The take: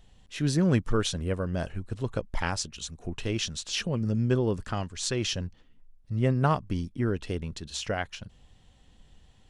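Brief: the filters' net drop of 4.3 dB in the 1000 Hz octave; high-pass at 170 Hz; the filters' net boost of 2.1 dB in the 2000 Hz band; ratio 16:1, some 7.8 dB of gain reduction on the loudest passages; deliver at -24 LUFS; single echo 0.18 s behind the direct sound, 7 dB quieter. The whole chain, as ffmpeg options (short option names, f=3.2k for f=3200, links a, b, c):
-af "highpass=170,equalizer=f=1k:t=o:g=-7.5,equalizer=f=2k:t=o:g=5.5,acompressor=threshold=-29dB:ratio=16,aecho=1:1:180:0.447,volume=11dB"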